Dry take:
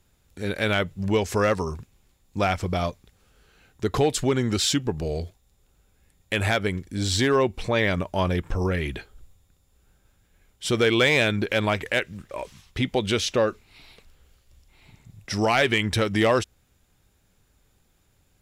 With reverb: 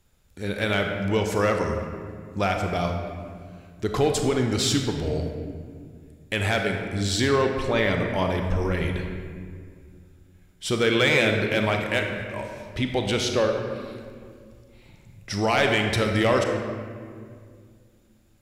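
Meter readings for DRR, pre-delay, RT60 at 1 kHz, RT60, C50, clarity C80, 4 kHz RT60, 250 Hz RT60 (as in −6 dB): 3.0 dB, 31 ms, 1.9 s, 2.1 s, 4.0 dB, 5.5 dB, 1.2 s, 3.0 s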